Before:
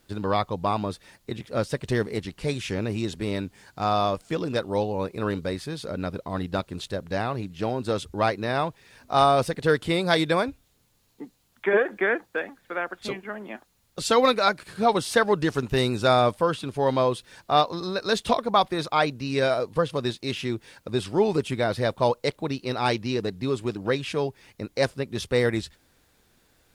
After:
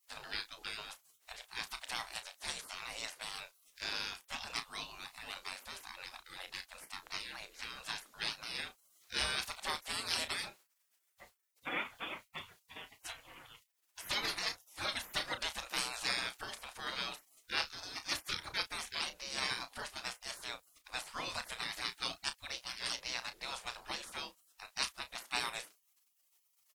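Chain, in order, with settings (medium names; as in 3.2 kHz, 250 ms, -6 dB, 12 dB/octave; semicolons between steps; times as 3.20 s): spectral gate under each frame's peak -25 dB weak; doubling 33 ms -11 dB; trim +2 dB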